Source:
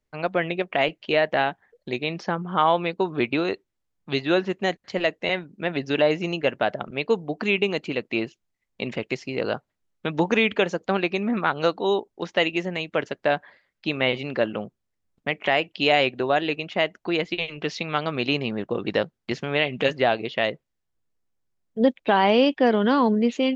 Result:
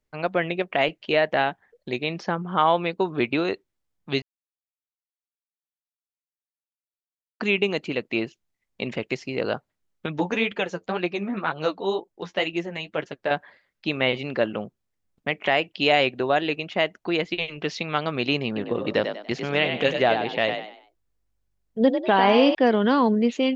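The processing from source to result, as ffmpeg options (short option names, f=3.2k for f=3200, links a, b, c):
-filter_complex "[0:a]asettb=1/sr,asplit=3[a][b][c];[a]atrim=end=10.064[d];[b]atrim=start=10.06:end=13.31,asetpts=PTS-STARTPTS,afade=t=in:d=0.004:c=qsin,afade=t=out:st=3.246:d=0.004:c=qsin,flanger=delay=5.5:depth=6:regen=23:speed=2:shape=sinusoidal[e];[c]atrim=start=13.306[f];[d][e]acrossfade=d=0.004:c1=hsin:c2=qsin[g];[g][f]acrossfade=d=0.004:c1=qsin:c2=hsin,asettb=1/sr,asplit=3[h][i][j];[h]atrim=end=18.464[k];[i]atrim=start=18.46:end=22.55,asetpts=PTS-STARTPTS,afade=t=in:d=0.004:c=qsin,afade=t=out:st=4.086:d=0.004:c=qsin,asplit=5[l][m][n][o][p];[m]adelay=97,afreqshift=48,volume=-7dB[q];[n]adelay=194,afreqshift=96,volume=-16.4dB[r];[o]adelay=291,afreqshift=144,volume=-25.7dB[s];[p]adelay=388,afreqshift=192,volume=-35.1dB[t];[l][q][r][s][t]amix=inputs=5:normalize=0,atrim=end_sample=180369[u];[j]atrim=start=22.546[v];[k][u]acrossfade=d=0.004:c1=hsin:c2=qsin[w];[w][v]acrossfade=d=0.004:c1=qsin:c2=hsin,asplit=3[x][y][z];[x]atrim=end=4.22,asetpts=PTS-STARTPTS,afade=t=out:st=4.216:d=0.004:c=hsin[aa];[y]atrim=start=4.22:end=7.4,asetpts=PTS-STARTPTS,volume=0[ab];[z]atrim=start=7.4,asetpts=PTS-STARTPTS,afade=t=in:d=0.004:c=hsin[ac];[aa][ab][ac]concat=n=3:v=0:a=1"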